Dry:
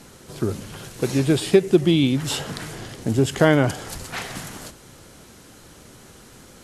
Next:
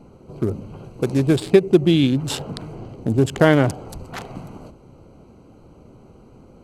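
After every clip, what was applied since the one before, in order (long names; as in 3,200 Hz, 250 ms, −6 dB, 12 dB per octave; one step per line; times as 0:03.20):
adaptive Wiener filter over 25 samples
level +2 dB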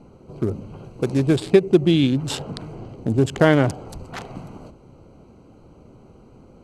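low-pass filter 10,000 Hz 12 dB per octave
level −1 dB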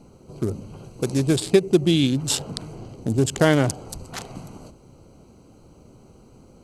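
bass and treble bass +1 dB, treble +13 dB
level −2.5 dB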